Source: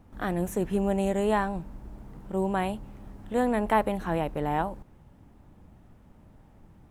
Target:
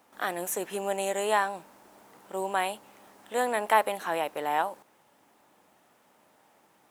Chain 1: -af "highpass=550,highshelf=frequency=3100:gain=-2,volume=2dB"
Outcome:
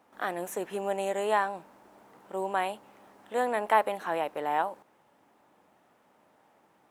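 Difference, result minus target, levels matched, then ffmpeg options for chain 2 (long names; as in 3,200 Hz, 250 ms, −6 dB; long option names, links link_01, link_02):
8,000 Hz band −8.0 dB
-af "highpass=550,highshelf=frequency=3100:gain=8,volume=2dB"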